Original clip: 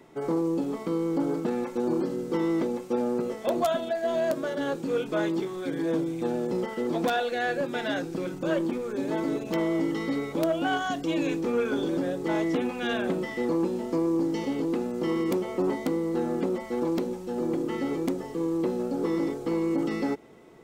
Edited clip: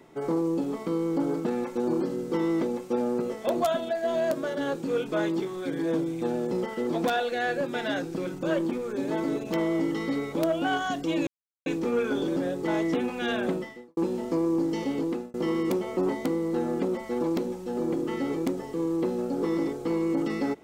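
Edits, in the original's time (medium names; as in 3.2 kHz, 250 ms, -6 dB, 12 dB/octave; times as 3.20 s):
11.27 s: insert silence 0.39 s
13.15–13.58 s: fade out quadratic
14.58–14.95 s: fade out equal-power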